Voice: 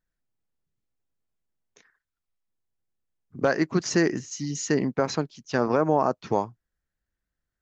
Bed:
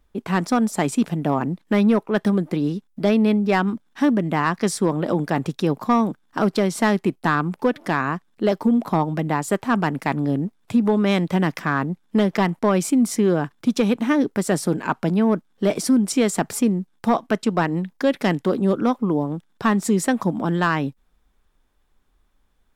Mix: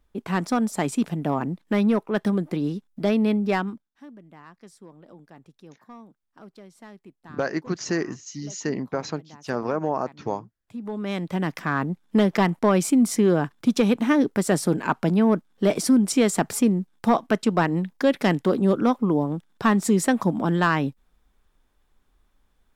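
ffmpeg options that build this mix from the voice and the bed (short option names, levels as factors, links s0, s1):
-filter_complex "[0:a]adelay=3950,volume=0.668[s0];[1:a]volume=13.3,afade=t=out:st=3.51:d=0.38:silence=0.0707946,afade=t=in:st=10.62:d=1.49:silence=0.0501187[s1];[s0][s1]amix=inputs=2:normalize=0"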